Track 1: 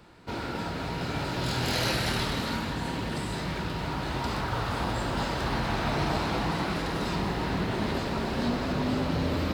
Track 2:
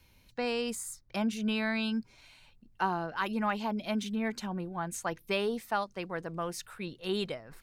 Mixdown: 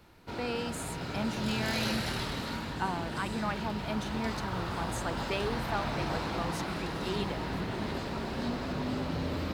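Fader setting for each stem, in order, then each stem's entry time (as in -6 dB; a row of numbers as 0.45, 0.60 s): -5.5, -3.5 dB; 0.00, 0.00 s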